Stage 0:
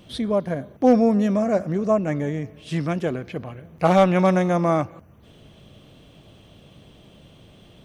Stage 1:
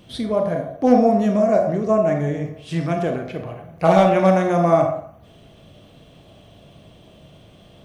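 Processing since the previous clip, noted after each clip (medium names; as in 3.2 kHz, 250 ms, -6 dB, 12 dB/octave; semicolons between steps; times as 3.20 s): on a send at -5 dB: peaking EQ 690 Hz +12 dB 0.43 oct + reverberation RT60 0.55 s, pre-delay 27 ms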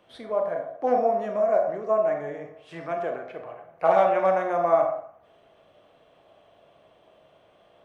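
three-band isolator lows -21 dB, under 440 Hz, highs -15 dB, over 2.1 kHz; trim -2.5 dB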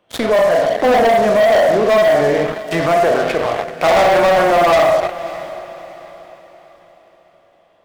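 waveshaping leveller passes 5; peak limiter -17.5 dBFS, peak gain reduction 10.5 dB; echo that smears into a reverb 566 ms, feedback 41%, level -15 dB; trim +8.5 dB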